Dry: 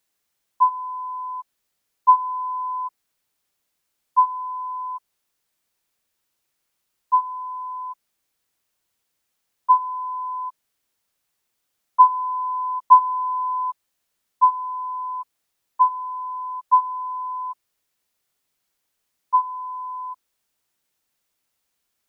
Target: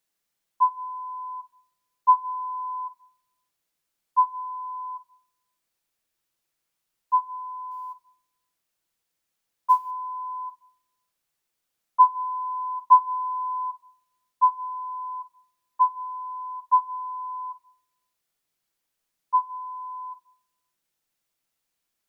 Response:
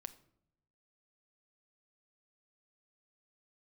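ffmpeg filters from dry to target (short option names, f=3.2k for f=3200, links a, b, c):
-filter_complex "[0:a]asettb=1/sr,asplit=3[a][b][c];[a]atrim=end=7.714[d];[b]atrim=start=7.71:end=9.91,asetpts=PTS-STARTPTS,afade=t=in:d=0.004:c=qsin,afade=t=out:st=2.196:d=0.004:c=qsin,acrusher=bits=9:mode=log:mix=0:aa=0.000001[e];[c]atrim=start=9.906[f];[d][e]acrossfade=d=0.004:c1=hsin:c2=qsin[g];[g][f]acrossfade=d=0.004:c1=qsin:c2=hsin[h];[1:a]atrim=start_sample=2205,asetrate=43218,aresample=44100[i];[h][i]afir=irnorm=-1:irlink=0"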